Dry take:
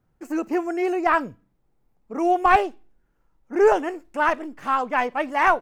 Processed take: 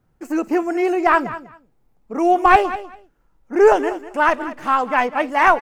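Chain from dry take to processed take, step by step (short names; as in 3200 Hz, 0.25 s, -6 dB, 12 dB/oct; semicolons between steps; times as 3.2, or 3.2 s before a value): feedback echo 0.197 s, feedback 16%, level -14.5 dB; gain +4.5 dB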